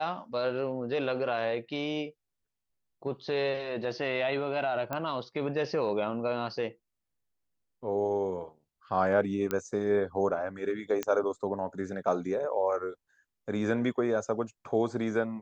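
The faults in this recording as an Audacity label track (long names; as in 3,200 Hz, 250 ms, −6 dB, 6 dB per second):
4.930000	4.930000	click −18 dBFS
9.510000	9.510000	click −16 dBFS
11.030000	11.030000	click −16 dBFS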